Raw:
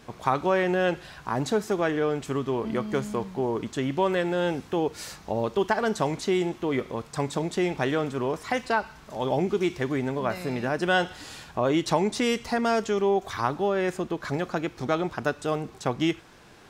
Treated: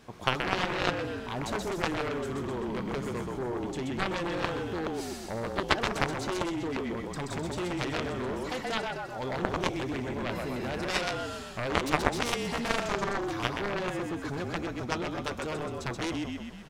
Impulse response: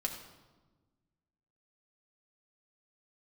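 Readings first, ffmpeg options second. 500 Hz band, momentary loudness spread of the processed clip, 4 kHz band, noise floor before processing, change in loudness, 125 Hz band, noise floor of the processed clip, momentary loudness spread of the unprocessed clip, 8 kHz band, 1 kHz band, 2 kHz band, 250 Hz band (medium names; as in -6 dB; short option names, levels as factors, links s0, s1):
-7.5 dB, 6 LU, +0.5 dB, -50 dBFS, -5.0 dB, -3.5 dB, -40 dBFS, 6 LU, -1.5 dB, -4.0 dB, -2.0 dB, -5.5 dB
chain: -filter_complex "[0:a]acontrast=25,asplit=9[s0][s1][s2][s3][s4][s5][s6][s7][s8];[s1]adelay=128,afreqshift=-33,volume=0.708[s9];[s2]adelay=256,afreqshift=-66,volume=0.389[s10];[s3]adelay=384,afreqshift=-99,volume=0.214[s11];[s4]adelay=512,afreqshift=-132,volume=0.117[s12];[s5]adelay=640,afreqshift=-165,volume=0.0646[s13];[s6]adelay=768,afreqshift=-198,volume=0.0355[s14];[s7]adelay=896,afreqshift=-231,volume=0.0195[s15];[s8]adelay=1024,afreqshift=-264,volume=0.0108[s16];[s0][s9][s10][s11][s12][s13][s14][s15][s16]amix=inputs=9:normalize=0,aeval=exprs='0.631*(cos(1*acos(clip(val(0)/0.631,-1,1)))-cos(1*PI/2))+0.282*(cos(3*acos(clip(val(0)/0.631,-1,1)))-cos(3*PI/2))':c=same"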